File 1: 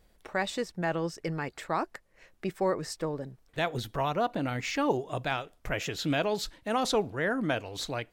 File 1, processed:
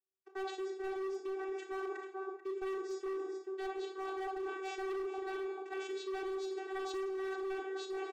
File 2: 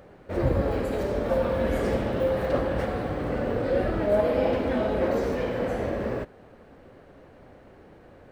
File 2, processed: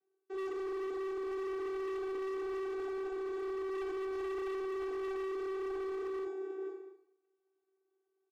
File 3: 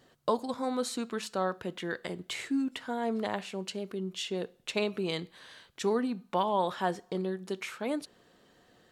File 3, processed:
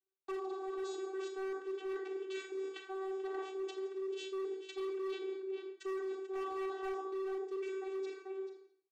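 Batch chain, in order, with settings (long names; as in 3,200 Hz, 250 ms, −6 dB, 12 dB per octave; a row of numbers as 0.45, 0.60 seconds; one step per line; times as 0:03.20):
mains-hum notches 50/100/150/200/250/300 Hz
on a send: echo with shifted repeats 137 ms, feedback 49%, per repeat −45 Hz, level −14 dB
on the sum: floating-point word with a short mantissa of 2 bits
parametric band 170 Hz +7.5 dB 0.27 octaves
noise gate −44 dBFS, range −33 dB
slap from a distant wall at 75 metres, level −8 dB
channel vocoder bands 16, saw 383 Hz
four-comb reverb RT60 0.56 s, combs from 28 ms, DRR 2.5 dB
hard clipping −28 dBFS
reversed playback
downward compressor 6 to 1, threshold −38 dBFS
reversed playback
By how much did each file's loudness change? −8.5, −12.0, −7.5 LU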